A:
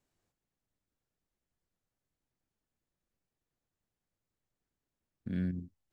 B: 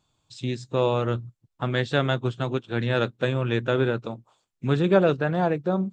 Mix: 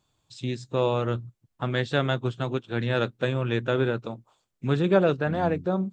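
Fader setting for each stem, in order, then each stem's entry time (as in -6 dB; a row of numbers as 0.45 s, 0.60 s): +0.5 dB, -1.5 dB; 0.00 s, 0.00 s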